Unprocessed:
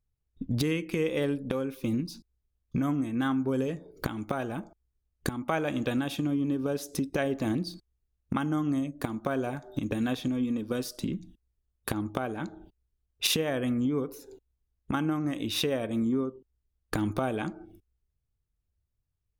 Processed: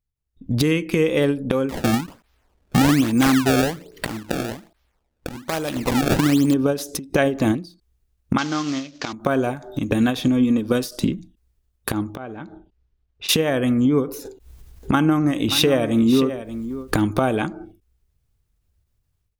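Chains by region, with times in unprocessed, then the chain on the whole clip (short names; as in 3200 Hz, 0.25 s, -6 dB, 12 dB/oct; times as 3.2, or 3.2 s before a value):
1.69–6.54 resonant high shelf 3200 Hz +13.5 dB, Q 1.5 + decimation with a swept rate 25×, swing 160% 1.2 Hz
8.38–9.13 CVSD 32 kbps + tilt +3.5 dB/oct
12.15–13.29 compressor 1.5:1, threshold -52 dBFS + air absorption 150 m
14.25–17.34 upward compressor, threshold -36 dBFS + echo 0.581 s -11.5 dB
whole clip: AGC gain up to 15 dB; ending taper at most 160 dB/s; gain -2.5 dB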